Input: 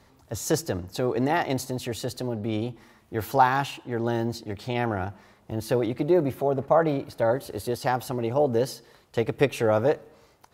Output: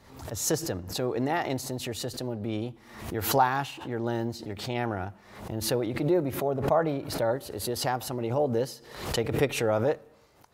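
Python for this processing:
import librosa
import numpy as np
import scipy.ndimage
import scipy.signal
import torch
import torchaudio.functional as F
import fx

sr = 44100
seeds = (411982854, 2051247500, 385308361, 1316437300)

y = fx.pre_swell(x, sr, db_per_s=78.0)
y = F.gain(torch.from_numpy(y), -4.0).numpy()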